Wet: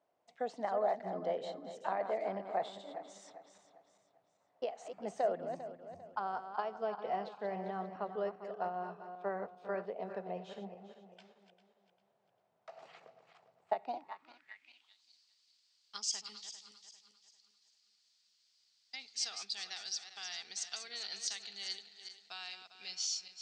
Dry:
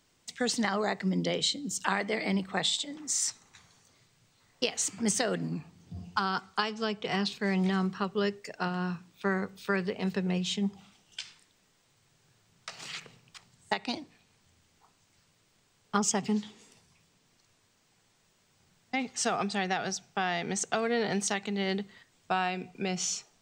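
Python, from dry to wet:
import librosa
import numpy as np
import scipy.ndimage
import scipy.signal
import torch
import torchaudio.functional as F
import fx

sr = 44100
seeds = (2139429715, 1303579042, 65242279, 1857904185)

y = fx.reverse_delay_fb(x, sr, ms=199, feedback_pct=59, wet_db=-9)
y = fx.filter_sweep_bandpass(y, sr, from_hz=660.0, to_hz=4600.0, start_s=13.87, end_s=15.06, q=4.6)
y = y * 10.0 ** (4.0 / 20.0)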